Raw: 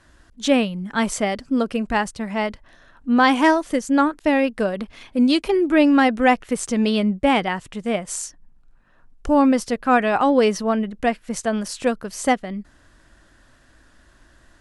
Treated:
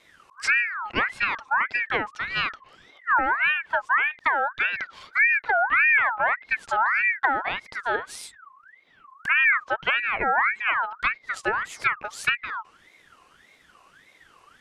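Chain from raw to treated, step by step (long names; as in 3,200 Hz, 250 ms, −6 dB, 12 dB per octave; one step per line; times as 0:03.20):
treble cut that deepens with the level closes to 430 Hz, closed at −14 dBFS
ring modulator whose carrier an LFO sweeps 1,600 Hz, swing 35%, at 1.7 Hz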